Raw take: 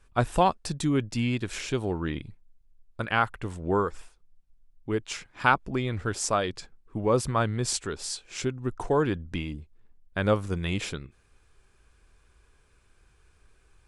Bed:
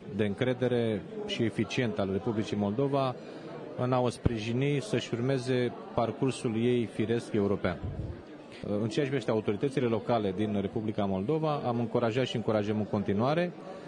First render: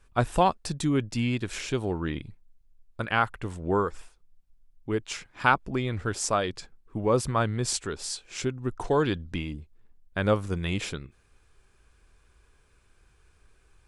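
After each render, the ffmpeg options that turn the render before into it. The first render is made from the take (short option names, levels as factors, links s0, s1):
-filter_complex "[0:a]asettb=1/sr,asplit=3[s0][s1][s2];[s0]atrim=end=8.844[s3];[s1]atrim=start=8.84:end=9.32,asetpts=PTS-STARTPTS,afade=t=in:d=0.004:c=qsin,afade=t=out:st=0.476:d=0.004:c=qsin,equalizer=f=4000:t=o:w=0.92:g=10.5[s4];[s2]atrim=start=9.316[s5];[s3][s4]acrossfade=d=0.004:c1=hsin:c2=qsin[s6];[s6][s5]acrossfade=d=0.004:c1=qsin:c2=hsin"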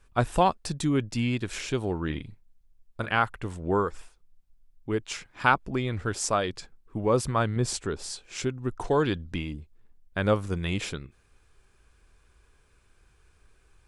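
-filter_complex "[0:a]asettb=1/sr,asplit=3[s0][s1][s2];[s0]atrim=end=2.064[s3];[s1]atrim=start=2.06:end=3.17,asetpts=PTS-STARTPTS,afade=t=in:d=0.004:c=qsin,afade=t=out:st=1.106:d=0.004:c=qsin,asplit=2[s4][s5];[s5]adelay=38,volume=0.282[s6];[s4][s6]amix=inputs=2:normalize=0,atrim=end_sample=48951[s7];[s2]atrim=start=3.166[s8];[s3][s7]acrossfade=d=0.004:c1=hsin:c2=qsin[s9];[s9][s8]acrossfade=d=0.004:c1=qsin:c2=hsin,asettb=1/sr,asplit=3[s10][s11][s12];[s10]atrim=end=7.564[s13];[s11]atrim=start=7.56:end=8.24,asetpts=PTS-STARTPTS,afade=t=in:d=0.004:c=qsin,afade=t=out:st=0.676:d=0.004:c=qsin,tiltshelf=f=1200:g=3.5[s14];[s12]atrim=start=8.236[s15];[s13][s14]acrossfade=d=0.004:c1=hsin:c2=qsin[s16];[s16][s15]acrossfade=d=0.004:c1=qsin:c2=hsin"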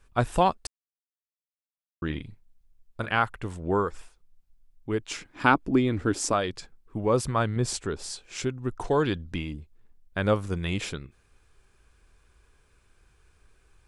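-filter_complex "[0:a]asettb=1/sr,asplit=3[s0][s1][s2];[s0]atrim=end=5.104[s3];[s1]atrim=start=5.1:end=6.33,asetpts=PTS-STARTPTS,afade=t=in:d=0.004:c=qsin,afade=t=out:st=1.226:d=0.004:c=qsin,equalizer=f=290:t=o:w=0.74:g=12[s4];[s2]atrim=start=6.326[s5];[s3][s4]acrossfade=d=0.004:c1=hsin:c2=qsin[s6];[s6][s5]acrossfade=d=0.004:c1=qsin:c2=hsin,asplit=3[s7][s8][s9];[s7]atrim=end=0.67,asetpts=PTS-STARTPTS,afade=t=out:st=0.666:d=0.004:c=hsin[s10];[s8]atrim=start=0.67:end=2.02,asetpts=PTS-STARTPTS,volume=0[s11];[s9]atrim=start=2.02,asetpts=PTS-STARTPTS,afade=t=in:d=0.004:c=hsin[s12];[s10][s11][s12]concat=n=3:v=0:a=1"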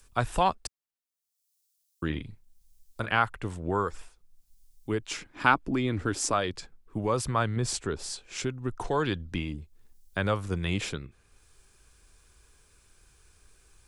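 -filter_complex "[0:a]acrossover=split=110|720|4400[s0][s1][s2][s3];[s1]alimiter=limit=0.0794:level=0:latency=1:release=194[s4];[s3]acompressor=mode=upward:threshold=0.00178:ratio=2.5[s5];[s0][s4][s2][s5]amix=inputs=4:normalize=0"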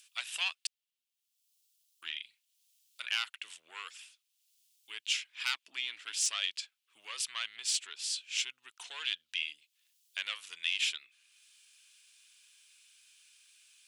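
-af "asoftclip=type=tanh:threshold=0.0841,highpass=f=2900:t=q:w=2.9"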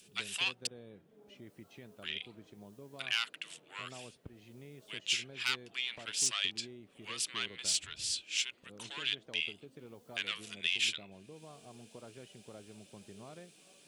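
-filter_complex "[1:a]volume=0.0668[s0];[0:a][s0]amix=inputs=2:normalize=0"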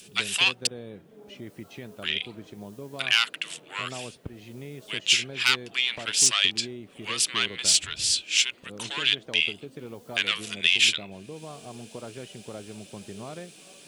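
-af "volume=3.76"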